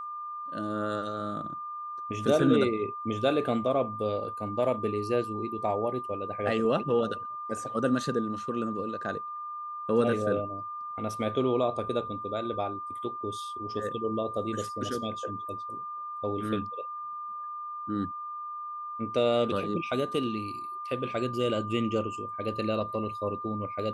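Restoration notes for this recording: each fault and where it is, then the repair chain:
whistle 1,200 Hz −35 dBFS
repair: notch filter 1,200 Hz, Q 30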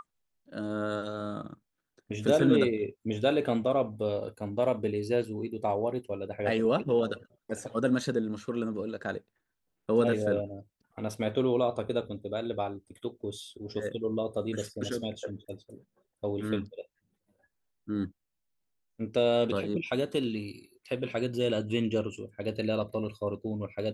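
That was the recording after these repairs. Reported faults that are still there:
none of them is left

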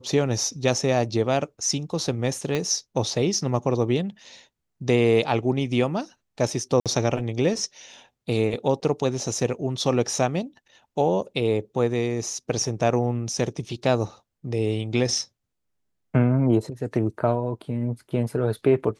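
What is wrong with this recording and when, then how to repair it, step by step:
0:02.55: click −13 dBFS
0:06.80–0:06.86: drop-out 57 ms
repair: click removal
repair the gap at 0:06.80, 57 ms

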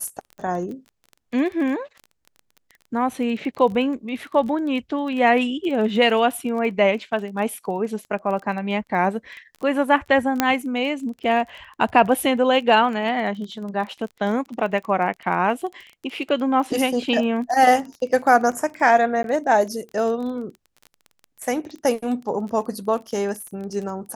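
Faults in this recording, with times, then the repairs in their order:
surface crackle 21 per second −30 dBFS
0:10.40: click −2 dBFS
0:19.23–0:19.24: drop-out 12 ms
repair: click removal
repair the gap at 0:19.23, 12 ms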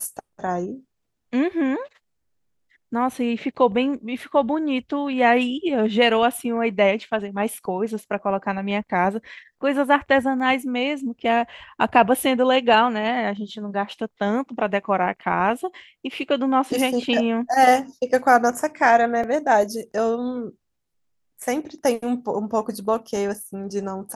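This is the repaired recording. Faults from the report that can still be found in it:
0:10.40: click

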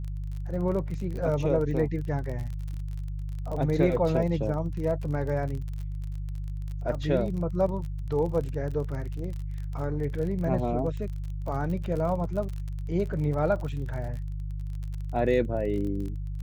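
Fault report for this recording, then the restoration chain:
surface crackle 37 per second −34 dBFS
mains hum 50 Hz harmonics 3 −33 dBFS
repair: click removal
hum removal 50 Hz, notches 3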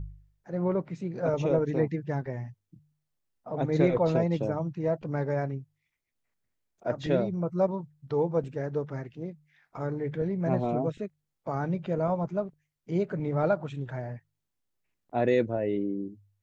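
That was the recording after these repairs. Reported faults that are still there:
none of them is left

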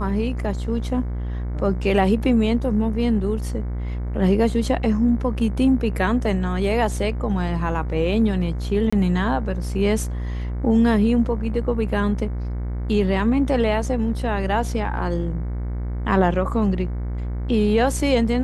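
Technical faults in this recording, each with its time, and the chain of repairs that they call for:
mains buzz 60 Hz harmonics 38 −26 dBFS
0:08.90–0:08.93: drop-out 25 ms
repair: hum removal 60 Hz, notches 38
repair the gap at 0:08.90, 25 ms

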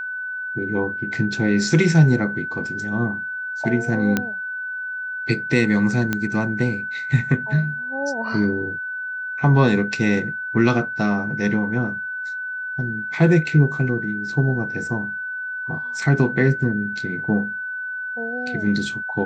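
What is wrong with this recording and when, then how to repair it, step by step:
whistle 1,500 Hz −26 dBFS
0:04.17: click −6 dBFS
0:06.13: click −8 dBFS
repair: click removal
notch filter 1,500 Hz, Q 30

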